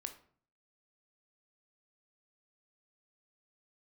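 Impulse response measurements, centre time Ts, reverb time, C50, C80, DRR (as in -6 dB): 9 ms, 0.50 s, 11.5 dB, 15.5 dB, 6.5 dB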